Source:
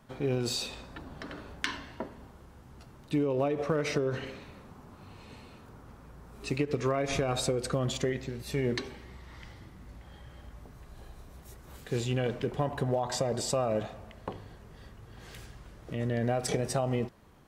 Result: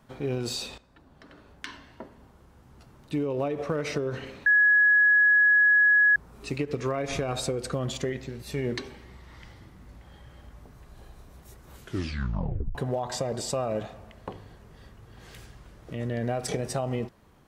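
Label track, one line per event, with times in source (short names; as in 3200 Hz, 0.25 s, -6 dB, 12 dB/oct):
0.780000	3.280000	fade in, from -15 dB
4.460000	6.160000	bleep 1680 Hz -16 dBFS
11.750000	11.750000	tape stop 1.00 s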